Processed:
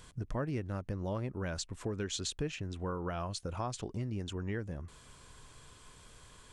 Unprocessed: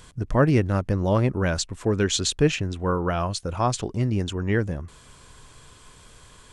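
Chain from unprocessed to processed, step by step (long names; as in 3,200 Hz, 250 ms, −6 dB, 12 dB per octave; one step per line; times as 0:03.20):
downward compressor 3 to 1, threshold −29 dBFS, peak gain reduction 11.5 dB
level −6.5 dB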